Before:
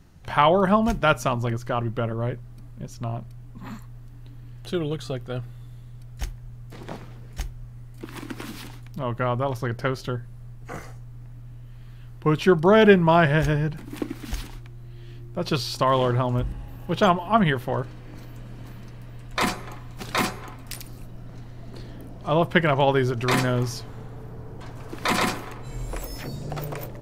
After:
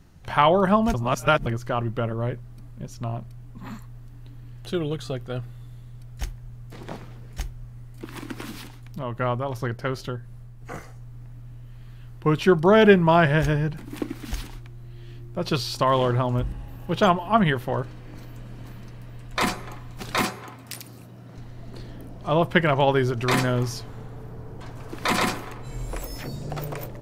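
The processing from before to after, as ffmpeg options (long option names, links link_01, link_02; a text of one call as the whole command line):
ffmpeg -i in.wav -filter_complex "[0:a]asettb=1/sr,asplit=3[link_01][link_02][link_03];[link_01]atrim=end=8.564[link_04];[link_02]atrim=start=8.56:end=11.12,asetpts=PTS-STARTPTS,afade=type=in:duration=0.004:curve=qsin,afade=type=out:start_time=2.556:duration=0.004:curve=qsin,tremolo=f=2.8:d=0.33[link_05];[link_03]atrim=start=11.116[link_06];[link_04][link_05]acrossfade=duration=0.004:curve1=hsin:curve2=qsin[link_07];[link_07][link_06]acrossfade=duration=0.004:curve1=qsin:curve2=hsin,asettb=1/sr,asplit=3[link_08][link_09][link_10];[link_08]atrim=end=20.234[link_11];[link_09]atrim=start=20.23:end=21.38,asetpts=PTS-STARTPTS,afade=type=in:duration=0.004:curve=qsin,afade=type=out:start_time=1.146:duration=0.004:curve=qsin,highpass=120[link_12];[link_10]atrim=start=21.376[link_13];[link_11][link_12]acrossfade=duration=0.004:curve1=hsin:curve2=qsin[link_14];[link_14][link_13]acrossfade=duration=0.004:curve1=qsin:curve2=hsin,asplit=3[link_15][link_16][link_17];[link_15]atrim=end=0.942[link_18];[link_16]atrim=start=0.938:end=1.462,asetpts=PTS-STARTPTS,areverse[link_19];[link_17]atrim=start=1.458[link_20];[link_18][link_19]acrossfade=duration=0.004:curve1=hsin:curve2=hsin[link_21];[link_21][link_20]acrossfade=duration=0.004:curve1=hsin:curve2=hsin" out.wav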